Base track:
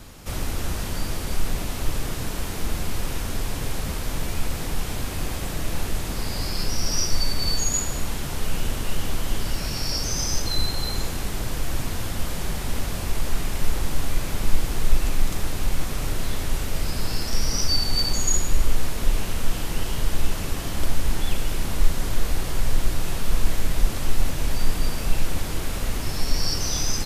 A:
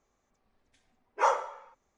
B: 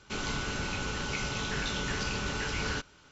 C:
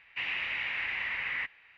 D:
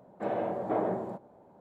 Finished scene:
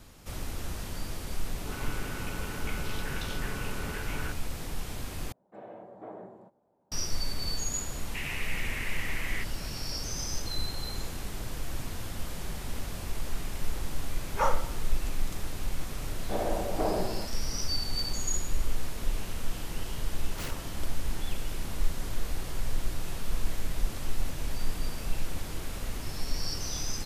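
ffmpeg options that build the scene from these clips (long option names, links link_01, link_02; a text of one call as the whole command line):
ffmpeg -i bed.wav -i cue0.wav -i cue1.wav -i cue2.wav -i cue3.wav -filter_complex "[4:a]asplit=2[link_01][link_02];[1:a]asplit=2[link_03][link_04];[0:a]volume=-9dB[link_05];[2:a]afwtdn=0.0126[link_06];[link_03]bandreject=frequency=1000:width=12[link_07];[link_04]aeval=exprs='(mod(11.9*val(0)+1,2)-1)/11.9':channel_layout=same[link_08];[link_05]asplit=2[link_09][link_10];[link_09]atrim=end=5.324[link_11];[link_01]atrim=end=1.6,asetpts=PTS-STARTPTS,volume=-14.5dB[link_12];[link_10]atrim=start=6.916[link_13];[link_06]atrim=end=3.11,asetpts=PTS-STARTPTS,volume=-4.5dB,afade=type=in:duration=0.004:curve=hsin,afade=type=out:start_time=3.106:duration=0.004:curve=hsin,adelay=1540[link_14];[3:a]atrim=end=1.77,asetpts=PTS-STARTPTS,volume=-4dB,afade=type=in:duration=0.004:curve=hsin,afade=type=out:start_time=1.766:duration=0.004:curve=hsin,adelay=7980[link_15];[link_07]atrim=end=1.97,asetpts=PTS-STARTPTS,volume=-2dB,afade=type=in:duration=0.004:curve=hsin,afade=type=out:start_time=1.966:duration=0.004:curve=hsin,adelay=13180[link_16];[link_02]atrim=end=1.6,asetpts=PTS-STARTPTS,volume=-0.5dB,afade=type=in:duration=0.004:curve=hsin,afade=type=out:start_time=1.596:duration=0.004:curve=hsin,adelay=16090[link_17];[link_08]atrim=end=1.97,asetpts=PTS-STARTPTS,volume=-13.5dB,afade=type=in:duration=0.004:curve=hsin,afade=type=out:start_time=1.966:duration=0.004:curve=hsin,adelay=19170[link_18];[link_11][link_12]acrossfade=duration=0.004:curve1=hsin:curve2=hsin[link_19];[link_19][link_13]acrossfade=duration=0.004:curve1=hsin:curve2=hsin[link_20];[link_20][link_14][link_15][link_16][link_17][link_18]amix=inputs=6:normalize=0" out.wav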